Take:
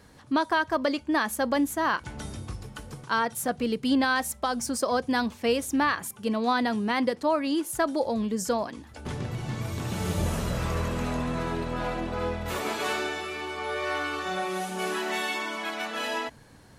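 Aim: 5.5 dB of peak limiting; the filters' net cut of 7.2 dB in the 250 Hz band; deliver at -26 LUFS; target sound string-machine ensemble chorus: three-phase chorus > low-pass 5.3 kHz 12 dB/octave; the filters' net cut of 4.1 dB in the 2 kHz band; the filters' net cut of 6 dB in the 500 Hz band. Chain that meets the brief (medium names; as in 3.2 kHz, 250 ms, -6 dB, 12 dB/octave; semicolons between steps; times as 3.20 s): peaking EQ 250 Hz -7 dB; peaking EQ 500 Hz -5.5 dB; peaking EQ 2 kHz -5 dB; peak limiter -21.5 dBFS; three-phase chorus; low-pass 5.3 kHz 12 dB/octave; trim +11.5 dB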